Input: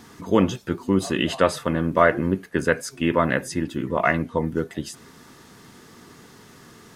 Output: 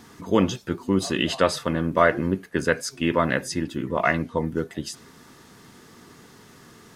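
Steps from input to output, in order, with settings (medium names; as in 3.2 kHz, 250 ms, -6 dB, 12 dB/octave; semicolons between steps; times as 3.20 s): dynamic bell 4.8 kHz, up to +6 dB, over -44 dBFS, Q 1.2; trim -1.5 dB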